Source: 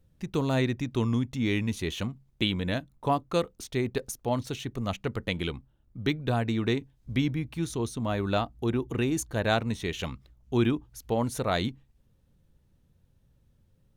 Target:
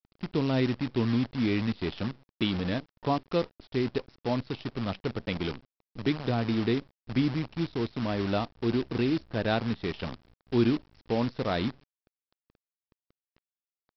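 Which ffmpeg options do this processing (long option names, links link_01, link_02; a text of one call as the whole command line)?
ffmpeg -i in.wav -af "equalizer=frequency=270:width=0.65:gain=6,aresample=11025,acrusher=bits=6:dc=4:mix=0:aa=0.000001,aresample=44100,volume=-4.5dB" out.wav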